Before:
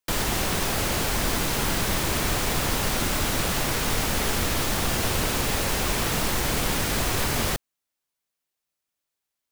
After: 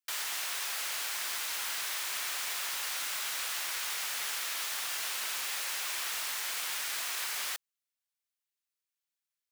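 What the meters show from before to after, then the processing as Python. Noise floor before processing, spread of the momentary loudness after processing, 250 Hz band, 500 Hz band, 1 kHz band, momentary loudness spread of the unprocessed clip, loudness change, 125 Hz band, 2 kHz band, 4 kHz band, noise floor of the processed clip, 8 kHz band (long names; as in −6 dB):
−85 dBFS, 0 LU, −35.0 dB, −23.5 dB, −13.0 dB, 0 LU, −8.5 dB, below −40 dB, −7.5 dB, −6.5 dB, below −85 dBFS, −6.5 dB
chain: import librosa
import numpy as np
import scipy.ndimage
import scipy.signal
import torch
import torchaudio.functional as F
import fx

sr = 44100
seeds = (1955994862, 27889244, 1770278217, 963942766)

y = scipy.signal.sosfilt(scipy.signal.butter(2, 1400.0, 'highpass', fs=sr, output='sos'), x)
y = y * librosa.db_to_amplitude(-6.5)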